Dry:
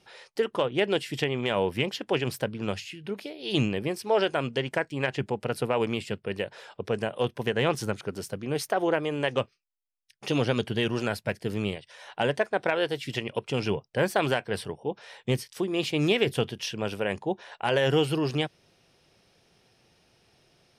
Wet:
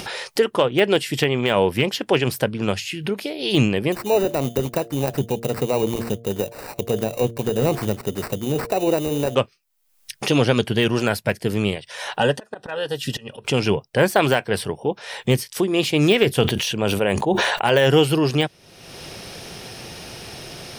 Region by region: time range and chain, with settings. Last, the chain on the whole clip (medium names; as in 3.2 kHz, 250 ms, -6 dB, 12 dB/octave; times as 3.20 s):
3.92–9.35 s: peaking EQ 1.7 kHz -12 dB 0.97 oct + sample-rate reducer 3.3 kHz + de-hum 115.7 Hz, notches 6
12.17–13.45 s: Butterworth band-stop 2.2 kHz, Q 4.9 + slow attack 440 ms + comb of notches 340 Hz
16.42–17.65 s: band-stop 5.2 kHz, Q 6.7 + dynamic bell 1.8 kHz, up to -4 dB, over -43 dBFS, Q 1.7 + decay stretcher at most 27 dB/s
whole clip: de-esser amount 75%; treble shelf 9.2 kHz +8.5 dB; upward compressor, threshold -28 dBFS; trim +8 dB